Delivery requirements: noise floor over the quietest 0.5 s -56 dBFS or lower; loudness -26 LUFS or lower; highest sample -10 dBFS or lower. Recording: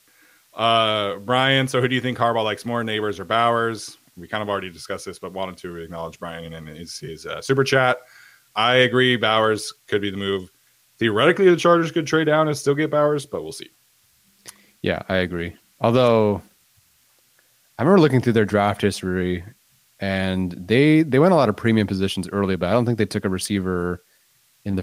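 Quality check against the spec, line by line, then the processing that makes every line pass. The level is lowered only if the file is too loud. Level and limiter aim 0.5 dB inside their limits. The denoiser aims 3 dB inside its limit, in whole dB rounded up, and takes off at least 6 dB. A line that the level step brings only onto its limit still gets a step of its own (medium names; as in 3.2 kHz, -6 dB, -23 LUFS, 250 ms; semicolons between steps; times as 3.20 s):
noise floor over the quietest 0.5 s -60 dBFS: pass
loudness -20.0 LUFS: fail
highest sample -4.5 dBFS: fail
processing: trim -6.5 dB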